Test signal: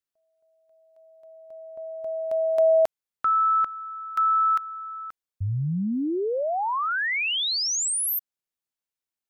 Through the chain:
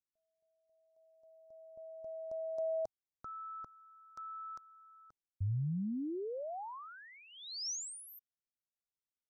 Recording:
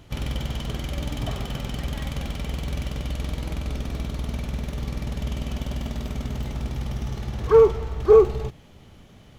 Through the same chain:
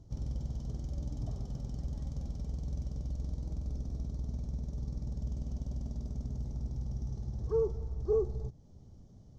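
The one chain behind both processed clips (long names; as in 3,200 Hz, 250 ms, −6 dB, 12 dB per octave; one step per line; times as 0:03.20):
drawn EQ curve 110 Hz 0 dB, 770 Hz −11 dB, 1,500 Hz −23 dB, 2,700 Hz −30 dB, 5,700 Hz −5 dB, 11,000 Hz −24 dB
in parallel at −1.5 dB: downward compressor, threshold −39 dBFS
on the sum: level −9 dB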